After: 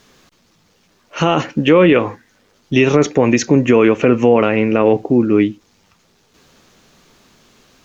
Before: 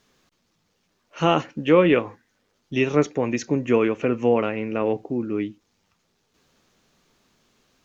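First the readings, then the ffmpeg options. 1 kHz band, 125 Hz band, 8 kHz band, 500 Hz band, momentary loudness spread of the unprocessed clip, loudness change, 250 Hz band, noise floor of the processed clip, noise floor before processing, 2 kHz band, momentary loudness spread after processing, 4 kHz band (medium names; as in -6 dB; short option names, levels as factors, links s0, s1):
+6.5 dB, +9.5 dB, no reading, +8.0 dB, 10 LU, +8.5 dB, +9.5 dB, -57 dBFS, -70 dBFS, +8.5 dB, 7 LU, +8.0 dB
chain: -af "alimiter=level_in=5.01:limit=0.891:release=50:level=0:latency=1,volume=0.891"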